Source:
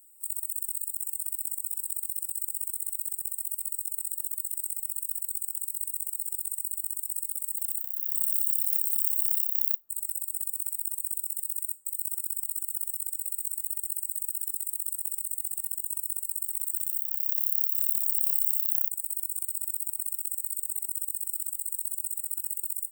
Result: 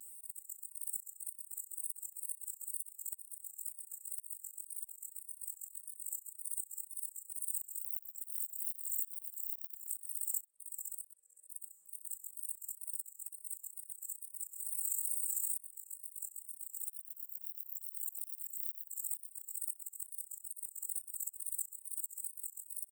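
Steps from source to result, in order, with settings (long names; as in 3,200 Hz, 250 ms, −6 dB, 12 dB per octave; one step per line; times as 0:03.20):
0:10.44–0:11.48: formant filter e
on a send: single-tap delay 698 ms −11 dB
0:14.48–0:15.57: on the sum: transient designer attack −11 dB, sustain +9 dB
high-shelf EQ 12,000 Hz −6.5 dB
volume swells 415 ms
tape wow and flutter 110 cents
multiband upward and downward compressor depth 40%
level +3 dB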